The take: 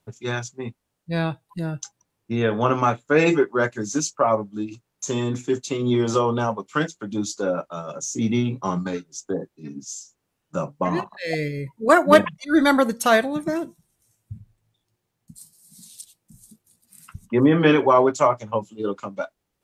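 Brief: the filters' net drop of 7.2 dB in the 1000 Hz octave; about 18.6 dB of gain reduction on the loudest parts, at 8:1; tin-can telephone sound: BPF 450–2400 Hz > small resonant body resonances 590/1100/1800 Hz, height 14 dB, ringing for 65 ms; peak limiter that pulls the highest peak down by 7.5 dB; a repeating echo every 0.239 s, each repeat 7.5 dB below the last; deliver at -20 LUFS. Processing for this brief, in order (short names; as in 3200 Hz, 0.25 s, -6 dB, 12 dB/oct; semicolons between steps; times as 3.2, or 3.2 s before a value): bell 1000 Hz -9 dB; compressor 8:1, threshold -32 dBFS; limiter -27.5 dBFS; BPF 450–2400 Hz; feedback echo 0.239 s, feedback 42%, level -7.5 dB; small resonant body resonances 590/1100/1800 Hz, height 14 dB, ringing for 65 ms; gain +17 dB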